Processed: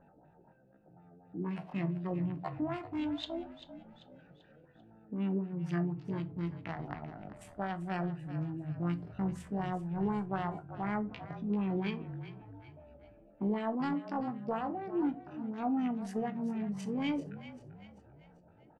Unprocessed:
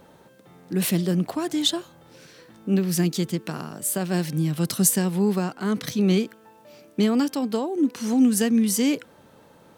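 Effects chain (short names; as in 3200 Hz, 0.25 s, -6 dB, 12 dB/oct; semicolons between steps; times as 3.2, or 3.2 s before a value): Wiener smoothing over 41 samples; resonant low shelf 610 Hz -6 dB, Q 3; compressor 1.5:1, threshold -37 dBFS, peak gain reduction 8 dB; LFO low-pass sine 7.8 Hz 390–2800 Hz; tempo 0.52×; frequency-shifting echo 0.39 s, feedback 44%, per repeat -39 Hz, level -13 dB; shoebox room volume 120 m³, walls furnished, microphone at 0.48 m; gain -3 dB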